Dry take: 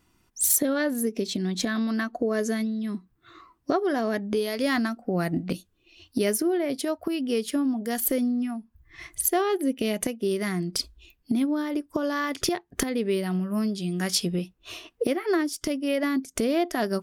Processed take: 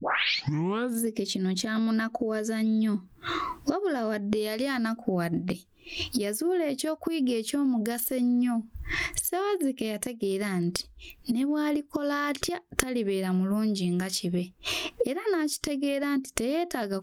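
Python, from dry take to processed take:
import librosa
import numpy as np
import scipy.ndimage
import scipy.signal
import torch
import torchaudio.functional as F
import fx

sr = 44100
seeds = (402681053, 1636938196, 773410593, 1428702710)

y = fx.tape_start_head(x, sr, length_s=1.01)
y = fx.recorder_agc(y, sr, target_db=-14.0, rise_db_per_s=52.0, max_gain_db=30)
y = y * 10.0 ** (-6.5 / 20.0)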